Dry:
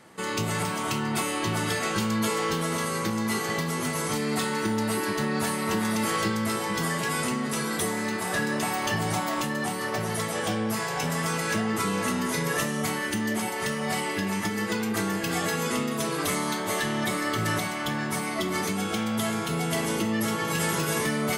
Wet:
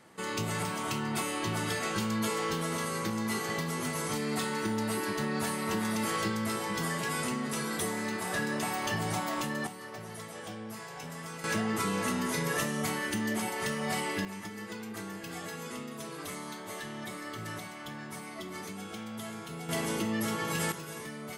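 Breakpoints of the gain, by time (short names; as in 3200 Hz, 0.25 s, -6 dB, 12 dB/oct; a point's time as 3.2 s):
-5 dB
from 9.67 s -14 dB
from 11.44 s -4 dB
from 14.25 s -13 dB
from 19.69 s -5 dB
from 20.72 s -15 dB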